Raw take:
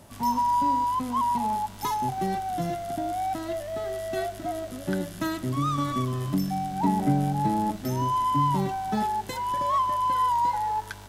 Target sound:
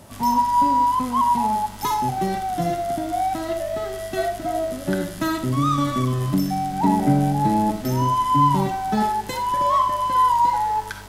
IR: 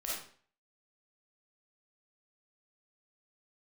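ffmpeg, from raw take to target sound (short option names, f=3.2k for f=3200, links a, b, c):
-filter_complex "[0:a]asplit=2[a][b];[1:a]atrim=start_sample=2205,atrim=end_sample=4410[c];[b][c]afir=irnorm=-1:irlink=0,volume=-5dB[d];[a][d]amix=inputs=2:normalize=0,volume=2.5dB"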